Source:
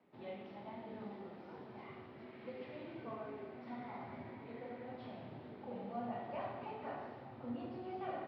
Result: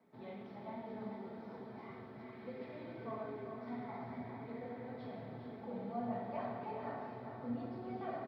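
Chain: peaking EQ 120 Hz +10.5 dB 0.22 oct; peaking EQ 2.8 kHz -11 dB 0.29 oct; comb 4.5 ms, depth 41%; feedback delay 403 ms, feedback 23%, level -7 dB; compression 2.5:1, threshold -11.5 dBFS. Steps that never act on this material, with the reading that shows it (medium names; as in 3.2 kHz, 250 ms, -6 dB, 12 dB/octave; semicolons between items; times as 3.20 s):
compression, threshold -11.5 dBFS: peak at its input -26.0 dBFS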